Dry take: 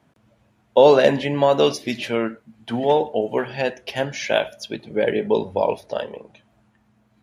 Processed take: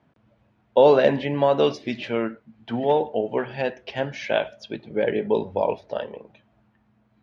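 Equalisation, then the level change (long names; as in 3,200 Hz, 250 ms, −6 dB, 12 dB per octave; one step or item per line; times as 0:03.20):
high-frequency loss of the air 170 metres
−2.0 dB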